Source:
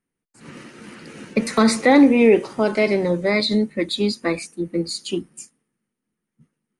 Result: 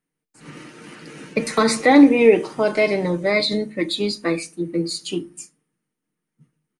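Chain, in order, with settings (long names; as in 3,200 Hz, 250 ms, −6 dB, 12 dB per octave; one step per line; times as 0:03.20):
low-shelf EQ 120 Hz −6.5 dB
comb filter 6.6 ms, depth 37%
convolution reverb, pre-delay 5 ms, DRR 12.5 dB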